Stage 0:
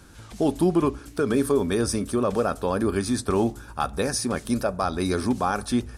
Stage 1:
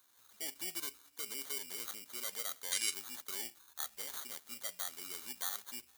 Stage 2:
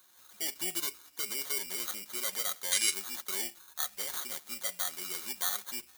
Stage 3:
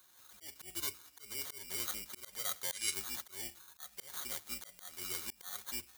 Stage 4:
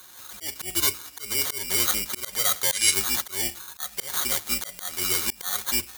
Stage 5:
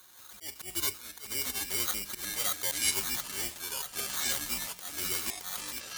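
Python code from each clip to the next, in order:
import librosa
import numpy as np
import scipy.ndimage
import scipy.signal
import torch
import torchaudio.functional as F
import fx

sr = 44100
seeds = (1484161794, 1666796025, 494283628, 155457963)

y1 = fx.sample_hold(x, sr, seeds[0], rate_hz=2600.0, jitter_pct=0)
y1 = fx.spec_box(y1, sr, start_s=2.72, length_s=0.21, low_hz=1500.0, high_hz=11000.0, gain_db=12)
y1 = np.diff(y1, prepend=0.0)
y1 = F.gain(torch.from_numpy(y1), -7.0).numpy()
y2 = y1 + 0.45 * np.pad(y1, (int(5.5 * sr / 1000.0), 0))[:len(y1)]
y2 = F.gain(torch.from_numpy(y2), 6.0).numpy()
y3 = fx.octave_divider(y2, sr, octaves=2, level_db=-2.0)
y3 = fx.auto_swell(y3, sr, attack_ms=275.0)
y3 = F.gain(torch.from_numpy(y3), -2.0).numpy()
y4 = fx.fold_sine(y3, sr, drive_db=4, ceiling_db=-13.5)
y4 = F.gain(torch.from_numpy(y4), 9.0).numpy()
y5 = fx.fade_out_tail(y4, sr, length_s=0.57)
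y5 = fx.echo_pitch(y5, sr, ms=446, semitones=-5, count=3, db_per_echo=-6.0)
y5 = F.gain(torch.from_numpy(y5), -8.5).numpy()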